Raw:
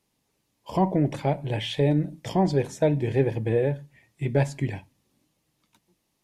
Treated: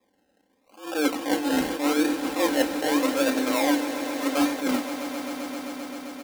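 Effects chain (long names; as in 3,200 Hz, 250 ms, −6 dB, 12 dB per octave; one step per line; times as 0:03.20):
high-shelf EQ 8,300 Hz −9.5 dB
in parallel at +3 dB: speech leveller
on the sum: frequency shifter +150 Hz
reversed playback
downward compressor 6 to 1, threshold −22 dBFS, peak gain reduction 13 dB
reversed playback
sample-and-hold swept by an LFO 30×, swing 60% 0.83 Hz
high-pass filter 170 Hz 6 dB per octave
comb filter 3.8 ms, depth 61%
echo that builds up and dies away 131 ms, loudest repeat 5, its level −14 dB
level that may rise only so fast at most 140 dB per second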